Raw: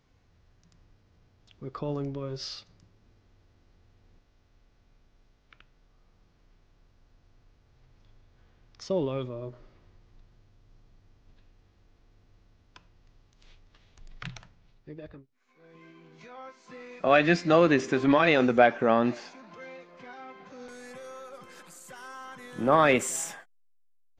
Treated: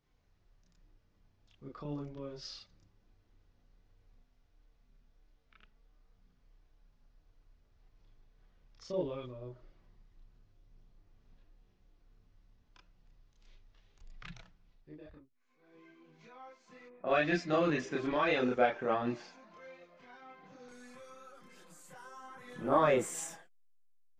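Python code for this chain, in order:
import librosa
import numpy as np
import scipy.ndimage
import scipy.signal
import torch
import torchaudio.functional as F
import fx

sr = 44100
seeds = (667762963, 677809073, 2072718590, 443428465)

y = fx.env_lowpass(x, sr, base_hz=810.0, full_db=-18.5, at=(16.85, 17.9), fade=0.02)
y = fx.chorus_voices(y, sr, voices=6, hz=0.37, base_ms=30, depth_ms=3.3, mix_pct=55)
y = y * 10.0 ** (-5.5 / 20.0)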